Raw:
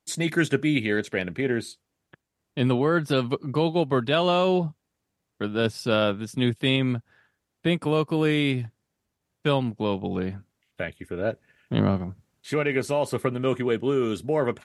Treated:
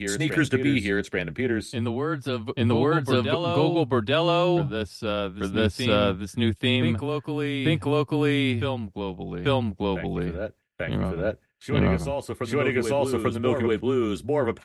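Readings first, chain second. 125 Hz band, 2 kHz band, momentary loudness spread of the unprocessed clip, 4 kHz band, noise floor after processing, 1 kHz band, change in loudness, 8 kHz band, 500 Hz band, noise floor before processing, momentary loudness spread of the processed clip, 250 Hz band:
+2.0 dB, +1.0 dB, 11 LU, +1.0 dB, −54 dBFS, +1.0 dB, +0.5 dB, +0.5 dB, +0.5 dB, −81 dBFS, 8 LU, +1.0 dB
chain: backwards echo 840 ms −5 dB
frequency shifter −21 Hz
noise gate with hold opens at −43 dBFS

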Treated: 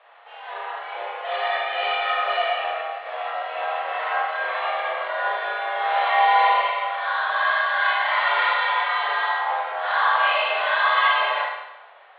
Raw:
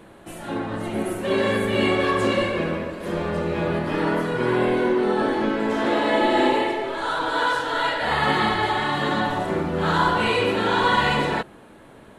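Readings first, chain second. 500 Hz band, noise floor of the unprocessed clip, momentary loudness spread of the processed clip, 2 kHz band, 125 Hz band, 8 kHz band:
−6.5 dB, −47 dBFS, 12 LU, +3.5 dB, below −40 dB, below −35 dB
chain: four-comb reverb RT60 0.95 s, combs from 26 ms, DRR −4 dB
single-sideband voice off tune +140 Hz 510–3,400 Hz
level −3.5 dB

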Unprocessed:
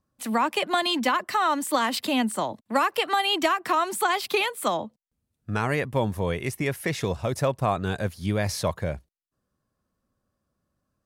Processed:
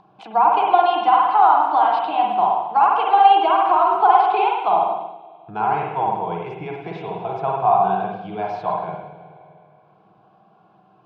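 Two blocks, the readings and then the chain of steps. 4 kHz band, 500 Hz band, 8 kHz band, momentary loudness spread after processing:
−5.5 dB, +4.0 dB, below −30 dB, 15 LU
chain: loudspeaker in its box 230–2,800 Hz, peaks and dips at 250 Hz −9 dB, 390 Hz −5 dB, 740 Hz +10 dB, 1,200 Hz −9 dB, 1,800 Hz +5 dB
spring reverb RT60 1.2 s, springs 47/52 ms, chirp 75 ms, DRR −2 dB
dynamic equaliser 1,100 Hz, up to +8 dB, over −33 dBFS, Q 1.2
phaser with its sweep stopped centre 370 Hz, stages 8
upward compression, threshold −34 dBFS
level +1 dB

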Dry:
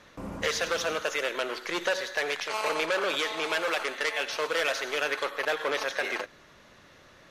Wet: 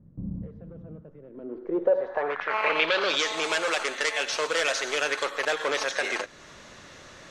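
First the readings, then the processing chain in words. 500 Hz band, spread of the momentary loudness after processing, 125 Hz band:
+2.0 dB, 18 LU, +7.5 dB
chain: in parallel at +1.5 dB: downward compressor, threshold −42 dBFS, peak gain reduction 18 dB
on the sum: low-pass filter sweep 160 Hz → 7,900 Hz, 0:01.23–0:03.35

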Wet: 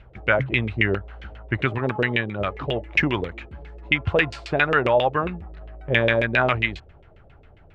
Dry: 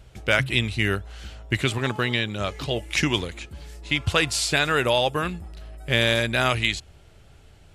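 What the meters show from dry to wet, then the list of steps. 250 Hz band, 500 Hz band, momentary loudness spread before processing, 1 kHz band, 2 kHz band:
+1.0 dB, +3.0 dB, 17 LU, +2.5 dB, +2.0 dB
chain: auto-filter low-pass saw down 7.4 Hz 410–2,700 Hz

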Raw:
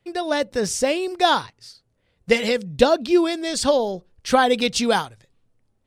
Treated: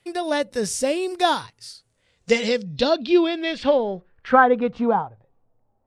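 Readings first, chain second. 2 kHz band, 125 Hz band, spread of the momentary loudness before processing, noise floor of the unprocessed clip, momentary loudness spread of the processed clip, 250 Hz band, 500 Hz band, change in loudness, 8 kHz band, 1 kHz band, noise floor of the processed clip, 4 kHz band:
−0.5 dB, −1.5 dB, 6 LU, −69 dBFS, 14 LU, 0.0 dB, −1.0 dB, −0.5 dB, −4.0 dB, +0.5 dB, −69 dBFS, −3.5 dB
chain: low-pass filter sweep 11,000 Hz → 790 Hz, 0:01.62–0:05.19
harmonic and percussive parts rebalanced percussive −8 dB
one half of a high-frequency compander encoder only

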